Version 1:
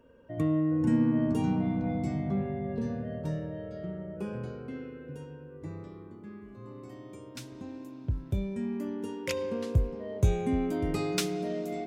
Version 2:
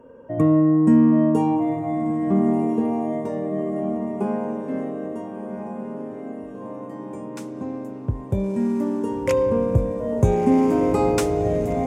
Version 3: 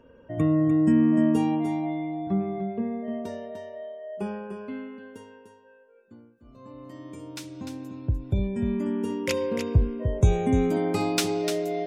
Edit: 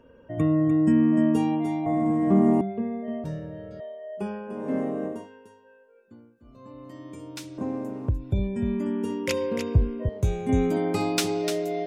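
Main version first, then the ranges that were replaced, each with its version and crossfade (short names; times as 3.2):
3
1.86–2.61 from 2
3.24–3.8 from 1
4.58–5.17 from 2, crossfade 0.24 s
7.58–8.09 from 2
10.09–10.49 from 1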